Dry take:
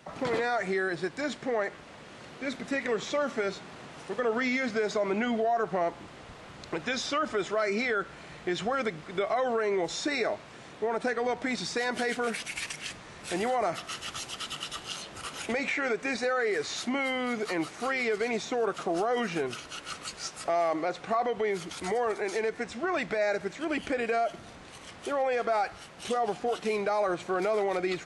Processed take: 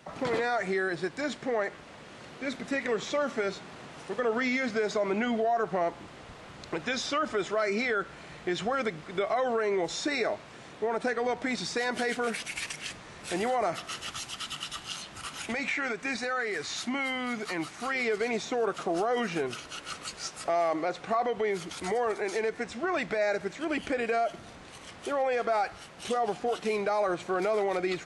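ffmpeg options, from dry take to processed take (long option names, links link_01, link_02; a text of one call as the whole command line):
ffmpeg -i in.wav -filter_complex "[0:a]asettb=1/sr,asplit=3[link_01][link_02][link_03];[link_01]atrim=end=14.114[link_04];[link_02]atrim=start=14.11:end=17.95,asetpts=PTS-STARTPTS,afade=type=in:duration=0.004:curve=qsin,afade=type=out:start_time=3.836:duration=0.004:curve=qsin,equalizer=frequency=470:width=1.5:gain=-7[link_05];[link_03]atrim=start=17.946[link_06];[link_04][link_05]acrossfade=duration=0.004:curve1=hsin:curve2=qsin[link_07];[link_07][link_06]acrossfade=duration=0.004:curve1=qsin:curve2=hsin" out.wav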